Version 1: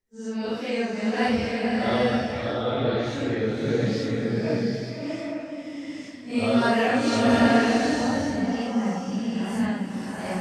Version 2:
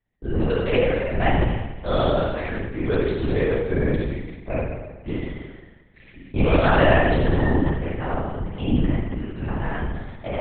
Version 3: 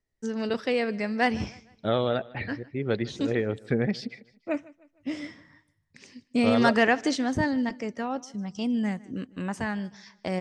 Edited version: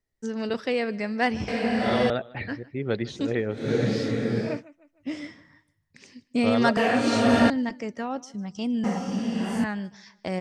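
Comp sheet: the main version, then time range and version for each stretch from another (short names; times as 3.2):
3
1.48–2.1 from 1
3.6–4.51 from 1, crossfade 0.24 s
6.77–7.5 from 1
8.84–9.64 from 1
not used: 2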